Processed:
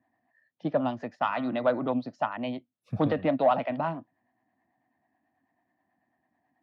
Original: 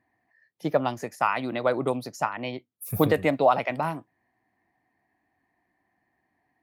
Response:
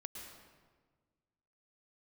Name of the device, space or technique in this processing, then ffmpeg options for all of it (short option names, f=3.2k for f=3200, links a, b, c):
guitar amplifier with harmonic tremolo: -filter_complex "[0:a]acrossover=split=440[a][b];[a]aeval=exprs='val(0)*(1-0.5/2+0.5/2*cos(2*PI*9.2*n/s))':c=same[c];[b]aeval=exprs='val(0)*(1-0.5/2-0.5/2*cos(2*PI*9.2*n/s))':c=same[d];[c][d]amix=inputs=2:normalize=0,asoftclip=type=tanh:threshold=-15.5dB,highpass=88,equalizer=f=250:t=q:w=4:g=7,equalizer=f=410:t=q:w=4:g=-7,equalizer=f=640:t=q:w=4:g=5,equalizer=f=2.2k:t=q:w=4:g=-7,lowpass=f=3.7k:w=0.5412,lowpass=f=3.7k:w=1.3066,asettb=1/sr,asplit=3[e][f][g];[e]atrim=end=1.214[h];[f]atrim=start=1.21:end=1.89,asetpts=PTS-STARTPTS,afade=t=in:d=0.004:c=qsin,afade=t=out:st=0.676:d=0.004:c=qsin,bandreject=f=133.5:t=h:w=4,bandreject=f=267:t=h:w=4,bandreject=f=400.5:t=h:w=4,bandreject=f=534:t=h:w=4,bandreject=f=667.5:t=h:w=4,bandreject=f=801:t=h:w=4,bandreject=f=934.5:t=h:w=4,bandreject=f=1.068k:t=h:w=4,bandreject=f=1.2015k:t=h:w=4,bandreject=f=1.335k:t=h:w=4,bandreject=f=1.4685k:t=h:w=4,bandreject=f=1.602k:t=h:w=4,bandreject=f=1.7355k:t=h:w=4,bandreject=f=1.869k:t=h:w=4,bandreject=f=2.0025k:t=h:w=4,bandreject=f=2.136k:t=h:w=4,bandreject=f=2.2695k:t=h:w=4,bandreject=f=2.403k:t=h:w=4[i];[g]atrim=start=1.886[j];[h][i]acrossfade=d=0.004:c1=hsin:c2=qsin[k];[k][j]acrossfade=d=0.004:c1=qsin:c2=hsin"